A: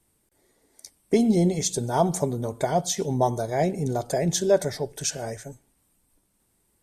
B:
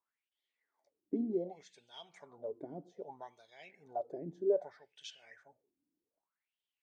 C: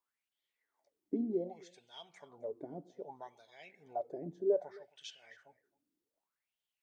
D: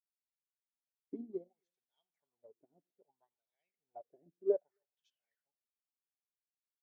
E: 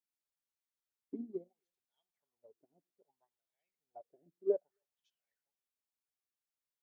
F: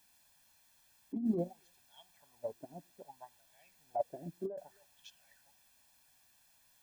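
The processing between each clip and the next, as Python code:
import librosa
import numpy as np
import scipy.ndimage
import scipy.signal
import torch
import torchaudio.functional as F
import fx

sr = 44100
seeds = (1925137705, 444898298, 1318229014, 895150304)

y1 = scipy.signal.sosfilt(scipy.signal.butter(2, 6000.0, 'lowpass', fs=sr, output='sos'), x)
y1 = fx.filter_lfo_bandpass(y1, sr, shape='sine', hz=0.64, low_hz=280.0, high_hz=3200.0, q=7.8)
y1 = F.gain(torch.from_numpy(y1), -3.5).numpy()
y2 = y1 + 10.0 ** (-23.5 / 20.0) * np.pad(y1, (int(265 * sr / 1000.0), 0))[:len(y1)]
y3 = fx.upward_expand(y2, sr, threshold_db=-50.0, expansion=2.5)
y3 = F.gain(torch.from_numpy(y3), 1.0).numpy()
y4 = fx.dynamic_eq(y3, sr, hz=210.0, q=1.1, threshold_db=-48.0, ratio=4.0, max_db=5)
y4 = F.gain(torch.from_numpy(y4), -2.0).numpy()
y5 = y4 + 0.7 * np.pad(y4, (int(1.2 * sr / 1000.0), 0))[:len(y4)]
y5 = fx.over_compress(y5, sr, threshold_db=-51.0, ratio=-1.0)
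y5 = F.gain(torch.from_numpy(y5), 16.0).numpy()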